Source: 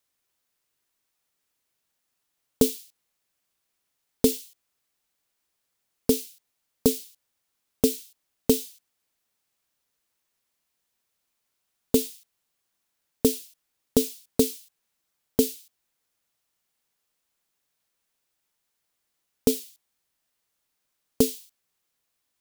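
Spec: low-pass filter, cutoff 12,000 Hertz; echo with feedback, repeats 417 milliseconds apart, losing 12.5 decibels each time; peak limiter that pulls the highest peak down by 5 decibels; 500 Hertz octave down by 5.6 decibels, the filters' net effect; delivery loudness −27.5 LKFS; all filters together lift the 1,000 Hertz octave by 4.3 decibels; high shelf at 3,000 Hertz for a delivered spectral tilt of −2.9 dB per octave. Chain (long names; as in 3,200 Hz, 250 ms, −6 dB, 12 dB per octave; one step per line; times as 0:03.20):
low-pass filter 12,000 Hz
parametric band 500 Hz −8 dB
parametric band 1,000 Hz +8.5 dB
high-shelf EQ 3,000 Hz +3.5 dB
brickwall limiter −10.5 dBFS
repeating echo 417 ms, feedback 24%, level −12.5 dB
level +5 dB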